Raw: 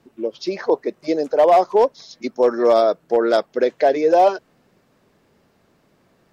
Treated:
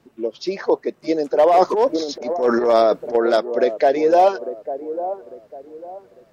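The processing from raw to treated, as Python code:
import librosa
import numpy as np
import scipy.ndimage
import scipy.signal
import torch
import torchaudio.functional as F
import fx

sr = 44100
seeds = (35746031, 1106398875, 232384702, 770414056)

y = fx.echo_wet_bandpass(x, sr, ms=849, feedback_pct=31, hz=430.0, wet_db=-11)
y = fx.transient(y, sr, attack_db=-10, sustain_db=10, at=(1.46, 3.15))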